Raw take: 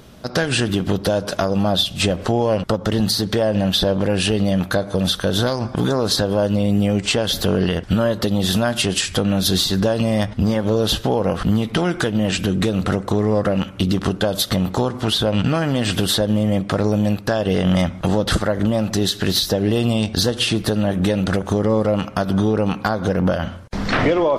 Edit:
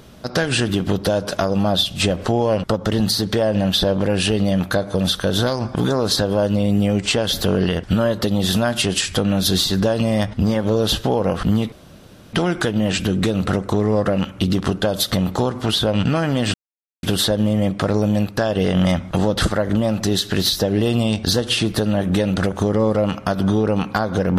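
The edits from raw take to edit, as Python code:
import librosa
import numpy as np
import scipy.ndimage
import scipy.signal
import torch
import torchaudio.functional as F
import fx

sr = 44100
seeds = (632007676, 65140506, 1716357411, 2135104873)

y = fx.edit(x, sr, fx.insert_room_tone(at_s=11.72, length_s=0.61),
    fx.insert_silence(at_s=15.93, length_s=0.49), tone=tone)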